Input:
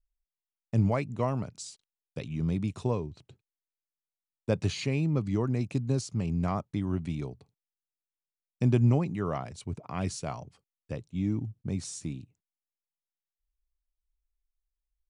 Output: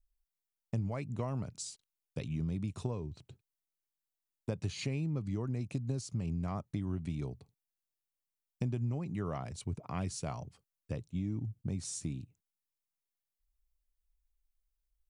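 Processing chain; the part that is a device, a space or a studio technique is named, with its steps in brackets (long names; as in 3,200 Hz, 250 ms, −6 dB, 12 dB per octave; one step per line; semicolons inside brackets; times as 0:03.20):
ASMR close-microphone chain (low-shelf EQ 160 Hz +6.5 dB; downward compressor 6 to 1, threshold −29 dBFS, peak gain reduction 13.5 dB; high-shelf EQ 8,400 Hz +7.5 dB)
level −3 dB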